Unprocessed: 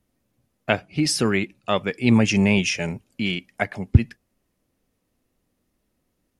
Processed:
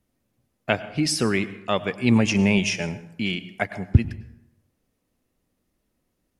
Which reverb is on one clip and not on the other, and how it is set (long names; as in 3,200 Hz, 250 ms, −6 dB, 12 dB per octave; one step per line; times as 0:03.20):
dense smooth reverb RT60 0.82 s, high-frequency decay 0.6×, pre-delay 85 ms, DRR 15 dB
level −1.5 dB